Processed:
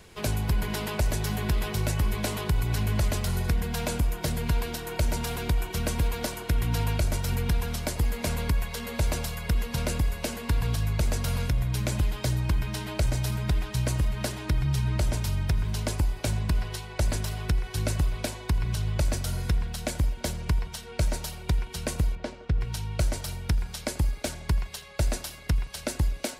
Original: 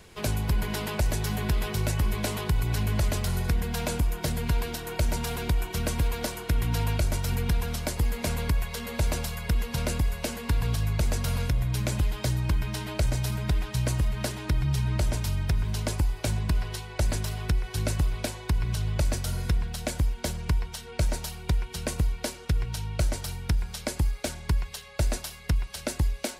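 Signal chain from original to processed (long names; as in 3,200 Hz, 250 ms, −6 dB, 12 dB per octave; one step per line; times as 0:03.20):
0:22.15–0:22.61: head-to-tape spacing loss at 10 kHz 23 dB
tape delay 84 ms, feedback 82%, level −18 dB, low-pass 2,400 Hz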